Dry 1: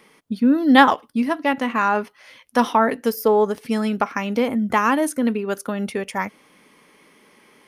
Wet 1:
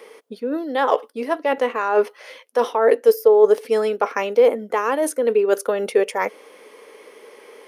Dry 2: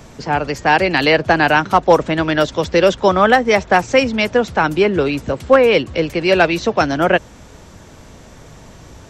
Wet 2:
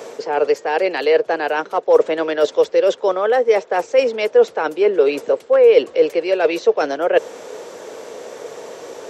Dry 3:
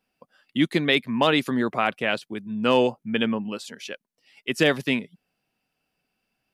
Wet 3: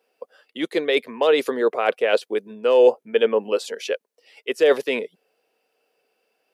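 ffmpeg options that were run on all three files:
-af "areverse,acompressor=threshold=-24dB:ratio=12,areverse,highpass=frequency=460:width_type=q:width=4.9,volume=4.5dB"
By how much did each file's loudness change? +0.5, −2.0, +2.5 LU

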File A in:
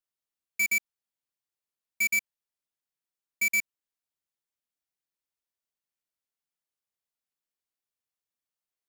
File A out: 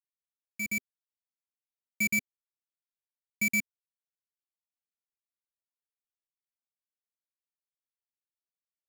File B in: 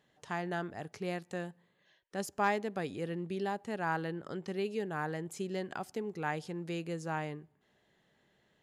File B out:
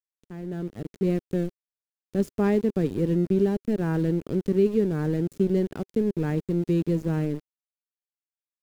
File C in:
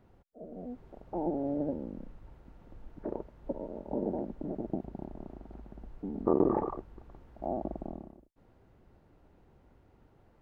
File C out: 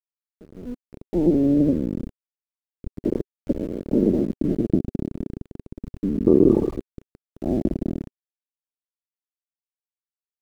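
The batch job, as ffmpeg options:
-af "aeval=exprs='val(0)*gte(abs(val(0)),0.01)':channel_layout=same,firequalizer=gain_entry='entry(250,0);entry(390,-2);entry(760,-21);entry(2000,-19)':delay=0.05:min_phase=1,dynaudnorm=framelen=110:gausssize=13:maxgain=13.5dB,alimiter=level_in=6.5dB:limit=-1dB:release=50:level=0:latency=1,volume=-3.5dB"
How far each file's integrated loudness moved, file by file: −3.5, +11.5, +13.5 LU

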